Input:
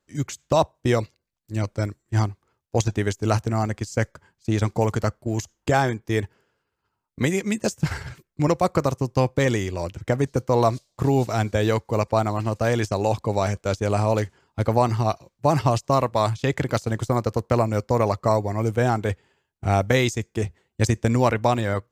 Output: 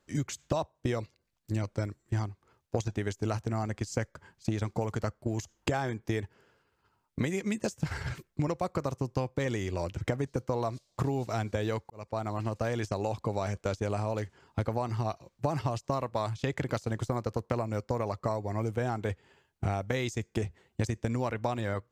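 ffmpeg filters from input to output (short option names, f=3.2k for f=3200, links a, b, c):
-filter_complex "[0:a]asplit=2[a][b];[a]atrim=end=11.9,asetpts=PTS-STARTPTS,afade=t=out:st=11.896:d=0.004:c=hsin[c];[b]atrim=start=11.9,asetpts=PTS-STARTPTS,afade=t=in:d=1.6[d];[c][d]concat=n=2:v=0:a=1,highshelf=f=8.2k:g=-5,acompressor=threshold=-33dB:ratio=8,volume=5dB"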